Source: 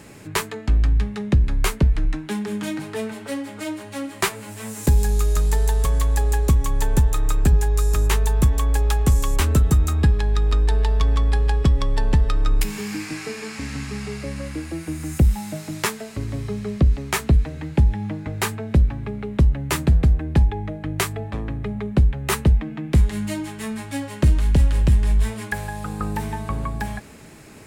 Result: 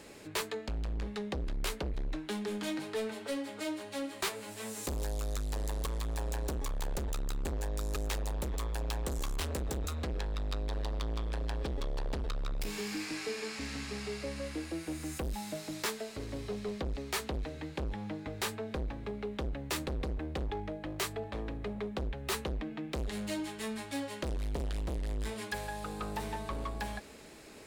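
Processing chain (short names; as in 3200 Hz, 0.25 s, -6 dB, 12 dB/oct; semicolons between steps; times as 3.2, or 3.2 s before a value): overloaded stage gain 23 dB; ten-band EQ 125 Hz -10 dB, 500 Hz +5 dB, 4000 Hz +6 dB; gain -8.5 dB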